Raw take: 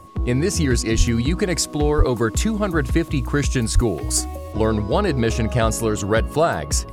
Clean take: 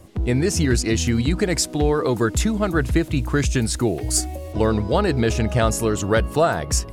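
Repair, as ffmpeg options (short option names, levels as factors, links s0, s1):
-filter_complex "[0:a]bandreject=f=1100:w=30,asplit=3[s0][s1][s2];[s0]afade=t=out:st=0.97:d=0.02[s3];[s1]highpass=f=140:w=0.5412,highpass=f=140:w=1.3066,afade=t=in:st=0.97:d=0.02,afade=t=out:st=1.09:d=0.02[s4];[s2]afade=t=in:st=1.09:d=0.02[s5];[s3][s4][s5]amix=inputs=3:normalize=0,asplit=3[s6][s7][s8];[s6]afade=t=out:st=1.97:d=0.02[s9];[s7]highpass=f=140:w=0.5412,highpass=f=140:w=1.3066,afade=t=in:st=1.97:d=0.02,afade=t=out:st=2.09:d=0.02[s10];[s8]afade=t=in:st=2.09:d=0.02[s11];[s9][s10][s11]amix=inputs=3:normalize=0,asplit=3[s12][s13][s14];[s12]afade=t=out:st=3.74:d=0.02[s15];[s13]highpass=f=140:w=0.5412,highpass=f=140:w=1.3066,afade=t=in:st=3.74:d=0.02,afade=t=out:st=3.86:d=0.02[s16];[s14]afade=t=in:st=3.86:d=0.02[s17];[s15][s16][s17]amix=inputs=3:normalize=0"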